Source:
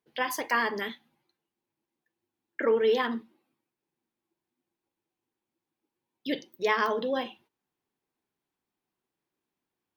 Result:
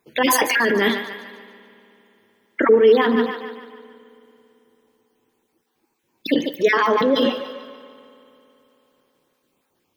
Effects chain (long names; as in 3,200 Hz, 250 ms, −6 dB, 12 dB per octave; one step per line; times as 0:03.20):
time-frequency cells dropped at random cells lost 28%
mains-hum notches 60/120/180/240 Hz
on a send: feedback echo with a high-pass in the loop 146 ms, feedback 49%, high-pass 210 Hz, level −13 dB
on the sum: dynamic equaliser 290 Hz, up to +8 dB, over −42 dBFS, Q 1
in parallel at +1 dB: compressor whose output falls as the input rises −33 dBFS, ratio −0.5
on the sum: spring reverb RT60 3.3 s, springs 55 ms, chirp 40 ms, DRR 18 dB
level +6.5 dB